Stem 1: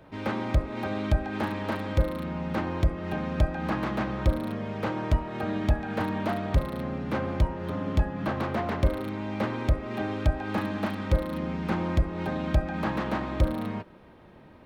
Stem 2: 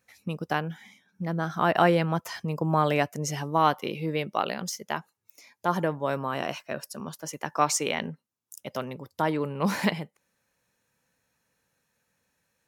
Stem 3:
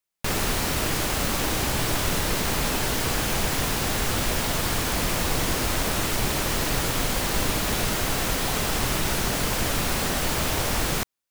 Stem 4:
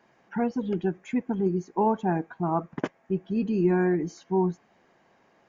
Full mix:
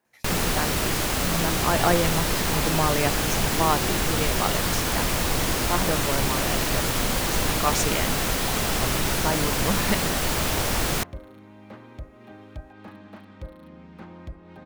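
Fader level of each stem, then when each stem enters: −14.5, −1.0, +0.5, −13.0 decibels; 2.30, 0.05, 0.00, 0.00 seconds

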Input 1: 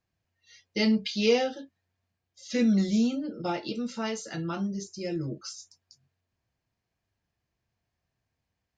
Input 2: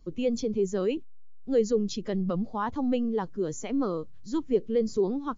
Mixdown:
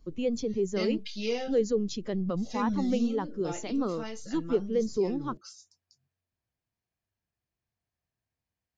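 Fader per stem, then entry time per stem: −8.0, −2.0 decibels; 0.00, 0.00 seconds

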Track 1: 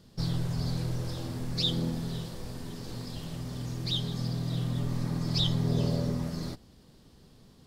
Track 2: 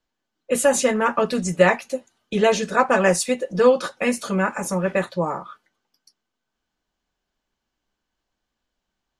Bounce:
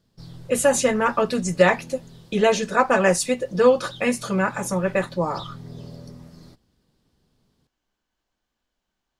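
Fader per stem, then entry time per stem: −11.0, −0.5 decibels; 0.00, 0.00 seconds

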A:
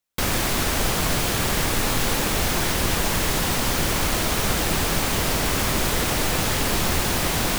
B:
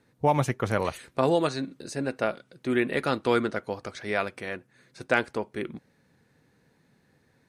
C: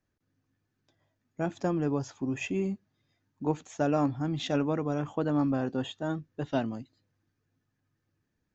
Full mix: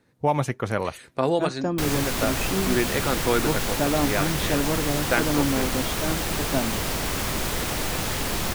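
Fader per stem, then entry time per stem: −4.5, +0.5, +2.5 decibels; 1.60, 0.00, 0.00 seconds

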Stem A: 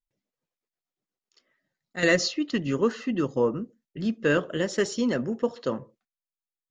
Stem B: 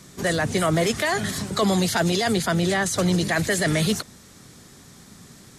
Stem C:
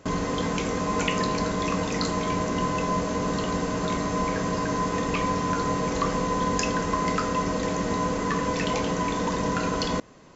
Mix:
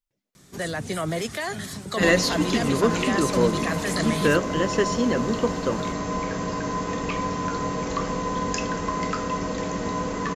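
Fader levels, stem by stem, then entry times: +2.0, −6.5, −1.5 decibels; 0.00, 0.35, 1.95 seconds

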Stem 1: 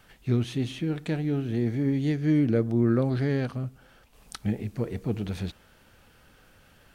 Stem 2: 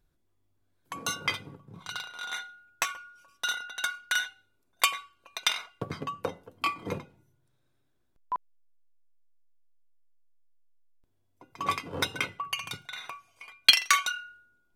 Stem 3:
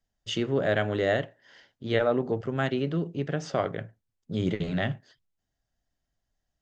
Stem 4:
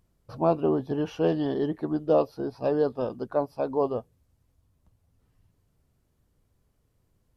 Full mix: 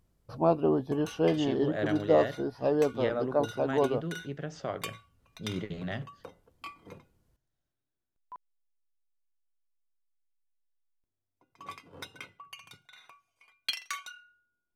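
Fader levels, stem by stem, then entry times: muted, −14.5 dB, −8.0 dB, −1.5 dB; muted, 0.00 s, 1.10 s, 0.00 s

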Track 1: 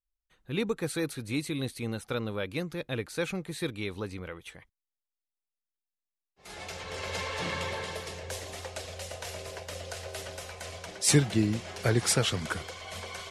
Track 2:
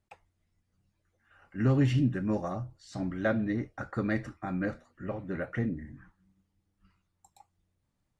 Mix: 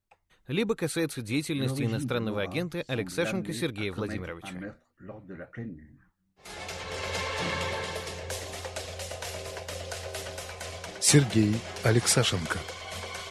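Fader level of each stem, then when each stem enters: +2.5, −7.5 decibels; 0.00, 0.00 seconds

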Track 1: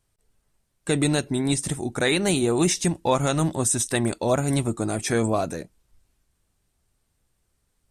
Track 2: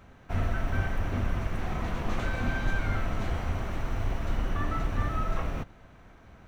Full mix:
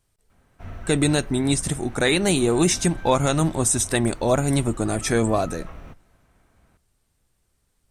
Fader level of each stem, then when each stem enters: +2.0, −8.5 decibels; 0.00, 0.30 seconds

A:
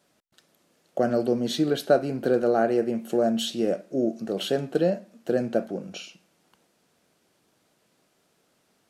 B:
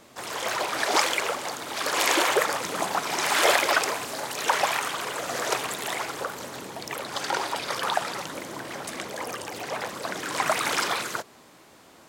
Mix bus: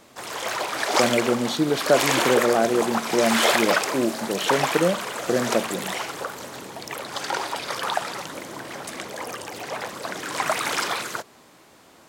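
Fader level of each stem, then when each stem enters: +1.5, +0.5 decibels; 0.00, 0.00 seconds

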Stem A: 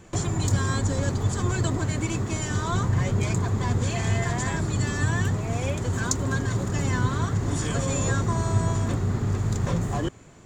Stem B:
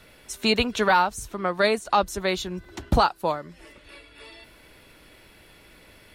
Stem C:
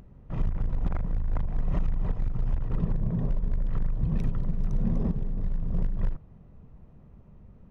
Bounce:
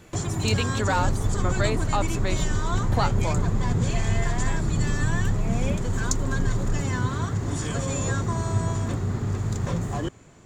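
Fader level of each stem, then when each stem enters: −1.5, −6.0, 0.0 decibels; 0.00, 0.00, 0.65 seconds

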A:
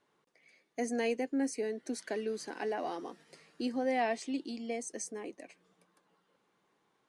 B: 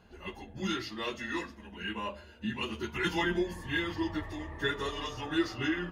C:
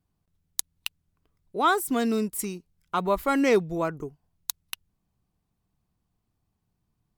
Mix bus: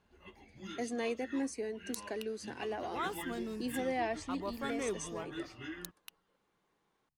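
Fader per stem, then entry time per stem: −3.5, −13.0, −16.0 decibels; 0.00, 0.00, 1.35 seconds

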